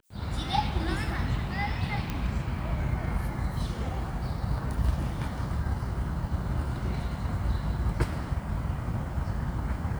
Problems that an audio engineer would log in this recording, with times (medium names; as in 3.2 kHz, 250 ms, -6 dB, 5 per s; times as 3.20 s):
2.10 s: pop -17 dBFS